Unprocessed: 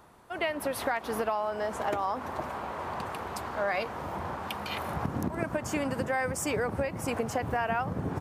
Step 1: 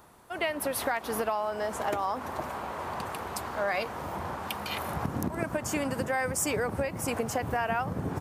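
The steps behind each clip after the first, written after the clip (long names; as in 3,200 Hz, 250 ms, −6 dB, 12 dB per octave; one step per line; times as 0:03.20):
high-shelf EQ 6,200 Hz +8 dB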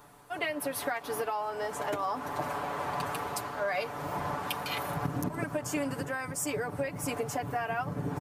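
comb filter 6.9 ms, depth 78%
speech leveller within 4 dB 0.5 s
level −4 dB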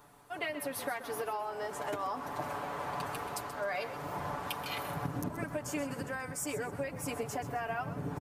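echo with shifted repeats 130 ms, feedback 32%, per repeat −36 Hz, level −12.5 dB
level −4 dB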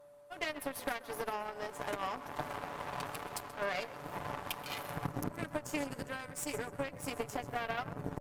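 harmonic generator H 5 −11 dB, 6 −20 dB, 7 −11 dB, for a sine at −19.5 dBFS
steady tone 580 Hz −53 dBFS
level −2.5 dB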